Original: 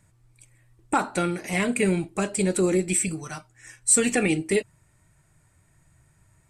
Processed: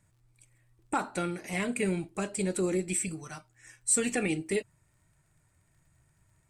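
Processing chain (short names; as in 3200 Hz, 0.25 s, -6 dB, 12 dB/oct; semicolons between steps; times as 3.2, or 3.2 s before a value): crackle 54/s -54 dBFS; gain -7 dB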